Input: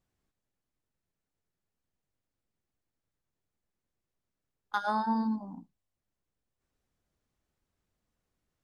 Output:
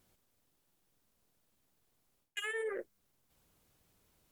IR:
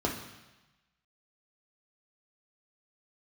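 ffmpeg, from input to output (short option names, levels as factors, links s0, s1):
-af "highshelf=f=2500:g=10,areverse,acompressor=threshold=0.00631:ratio=8,areverse,asetrate=88200,aresample=44100,volume=2.51"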